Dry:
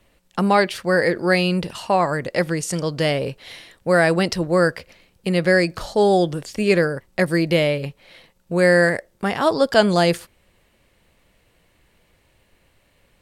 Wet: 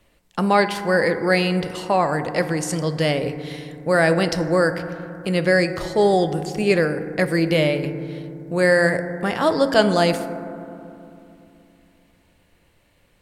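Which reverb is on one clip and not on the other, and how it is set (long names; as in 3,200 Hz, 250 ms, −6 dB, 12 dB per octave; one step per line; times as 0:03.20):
feedback delay network reverb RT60 2.8 s, low-frequency decay 1.4×, high-frequency decay 0.25×, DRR 9 dB
level −1 dB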